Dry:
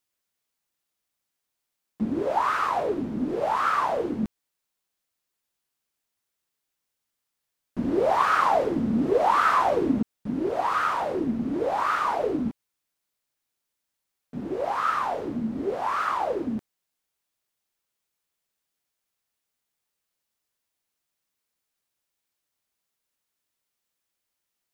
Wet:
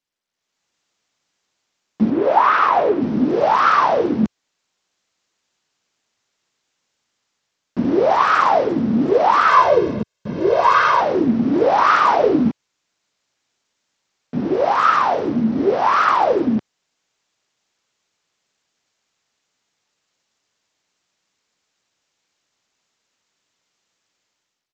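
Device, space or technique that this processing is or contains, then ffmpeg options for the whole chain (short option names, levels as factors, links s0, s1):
Bluetooth headset: -filter_complex "[0:a]asettb=1/sr,asplit=3[s0][s1][s2];[s0]atrim=end=2.104[s3];[s1]atrim=start=2.1:end=3.02,asetpts=PTS-STARTPTS,afade=t=in:d=0.004:c=qsin,afade=t=out:st=0.916:d=0.004:c=qsin,bass=f=250:g=-6,treble=f=4000:g=-10[s4];[s2]atrim=start=3.016[s5];[s3][s4]acrossfade=d=0.004:c1=hsin:c2=qsin[s6];[s6][s5]acrossfade=d=0.004:c1=qsin:c2=hsin,asettb=1/sr,asplit=3[s7][s8][s9];[s7]atrim=end=9.494[s10];[s8]atrim=start=9.49:end=11.01,asetpts=PTS-STARTPTS,afade=t=in:d=0.004:c=qsin,afade=t=out:st=1.516:d=0.004:c=qsin,aecho=1:1:1.9:0.79,atrim=end_sample=67032[s11];[s9]atrim=start=11.006[s12];[s10][s11]acrossfade=d=0.004:c1=hsin:c2=qsin[s13];[s13][s12]acrossfade=d=0.004:c1=qsin:c2=hsin,highpass=100,dynaudnorm=f=200:g=5:m=5.01,aresample=16000,aresample=44100,volume=0.891" -ar 32000 -c:a sbc -b:a 64k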